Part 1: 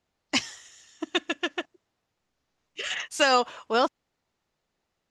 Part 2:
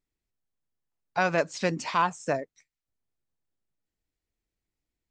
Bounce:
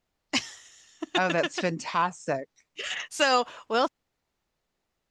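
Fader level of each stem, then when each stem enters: −1.5, −1.0 decibels; 0.00, 0.00 seconds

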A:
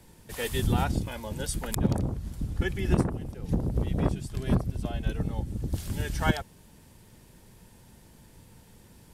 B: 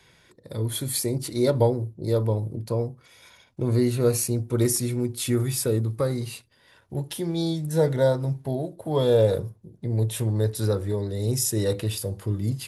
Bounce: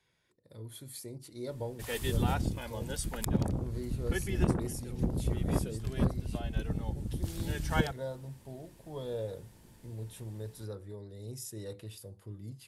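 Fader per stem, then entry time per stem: −4.0, −18.0 decibels; 1.50, 0.00 seconds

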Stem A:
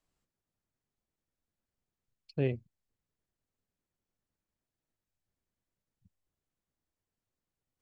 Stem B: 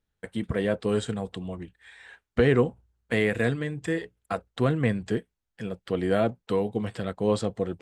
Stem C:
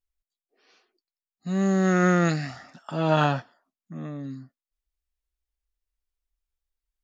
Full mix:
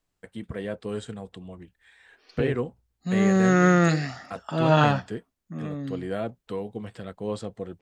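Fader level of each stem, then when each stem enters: +2.5, −6.5, +2.0 decibels; 0.00, 0.00, 1.60 seconds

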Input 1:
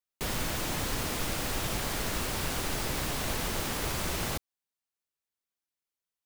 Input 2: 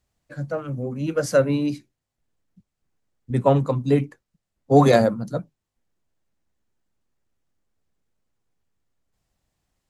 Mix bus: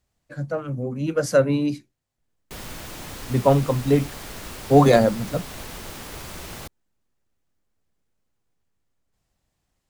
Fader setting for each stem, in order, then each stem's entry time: −4.5, +0.5 decibels; 2.30, 0.00 seconds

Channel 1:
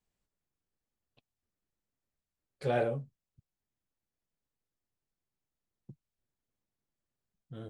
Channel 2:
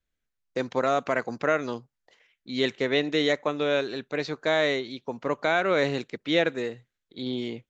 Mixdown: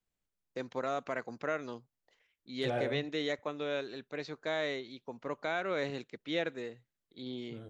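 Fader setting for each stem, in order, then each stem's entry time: −4.5, −10.5 decibels; 0.00, 0.00 seconds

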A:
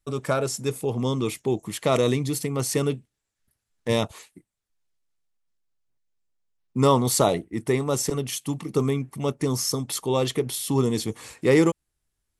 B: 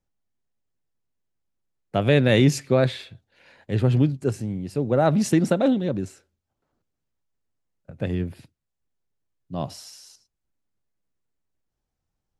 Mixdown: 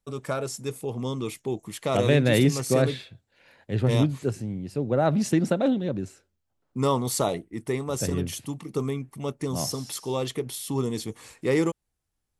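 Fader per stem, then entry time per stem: −5.0, −3.0 decibels; 0.00, 0.00 seconds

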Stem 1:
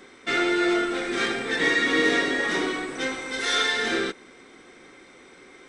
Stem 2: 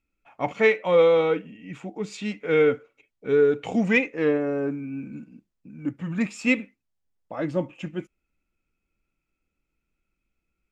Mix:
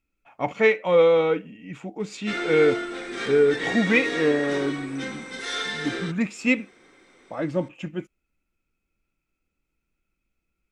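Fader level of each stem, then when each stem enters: −6.0, +0.5 decibels; 2.00, 0.00 seconds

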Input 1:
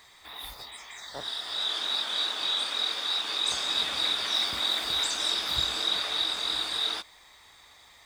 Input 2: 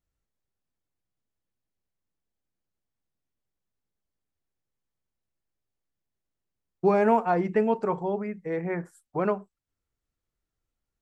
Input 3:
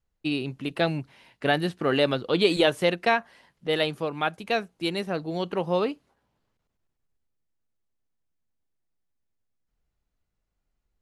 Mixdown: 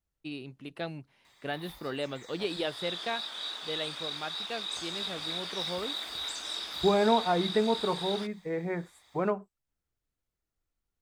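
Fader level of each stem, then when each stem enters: −8.5, −3.0, −12.0 decibels; 1.25, 0.00, 0.00 seconds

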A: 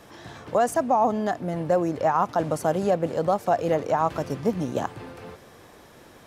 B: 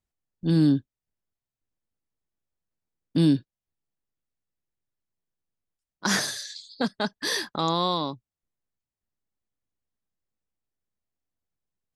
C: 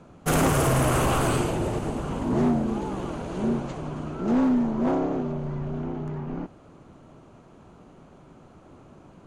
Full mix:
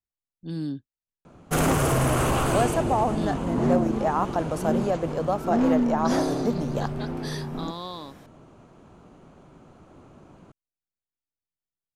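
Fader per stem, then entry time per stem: −3.0, −11.0, −0.5 decibels; 2.00, 0.00, 1.25 seconds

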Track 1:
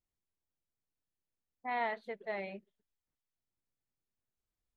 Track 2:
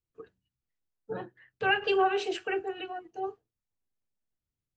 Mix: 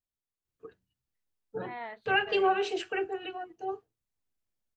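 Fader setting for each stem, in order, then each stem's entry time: −6.0, −0.5 decibels; 0.00, 0.45 seconds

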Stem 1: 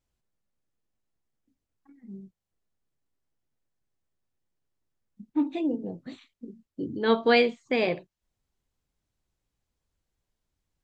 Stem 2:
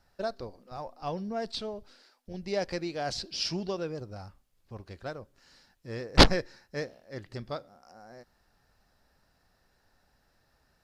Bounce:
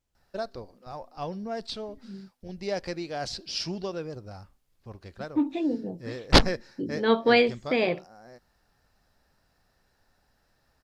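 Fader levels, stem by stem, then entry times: +0.5, 0.0 decibels; 0.00, 0.15 seconds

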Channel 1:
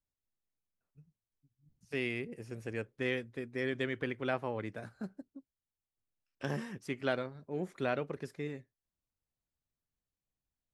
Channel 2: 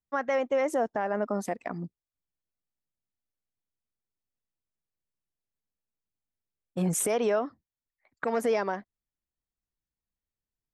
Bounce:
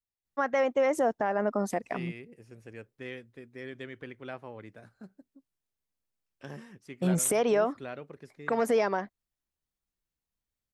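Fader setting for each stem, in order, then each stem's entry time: −7.0, +1.0 decibels; 0.00, 0.25 seconds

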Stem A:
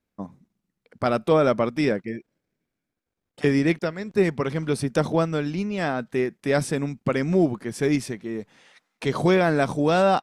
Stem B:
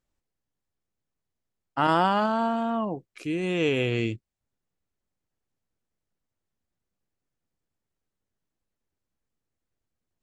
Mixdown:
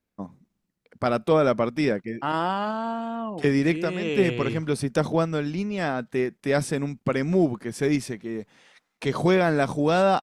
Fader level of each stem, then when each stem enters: −1.0, −3.5 decibels; 0.00, 0.45 seconds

